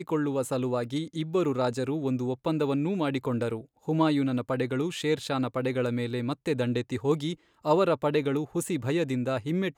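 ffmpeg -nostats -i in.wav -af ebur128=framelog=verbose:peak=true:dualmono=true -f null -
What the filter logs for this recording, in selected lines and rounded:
Integrated loudness:
  I:         -25.5 LUFS
  Threshold: -35.5 LUFS
Loudness range:
  LRA:         1.1 LU
  Threshold: -45.5 LUFS
  LRA low:   -26.1 LUFS
  LRA high:  -24.9 LUFS
True peak:
  Peak:       -9.8 dBFS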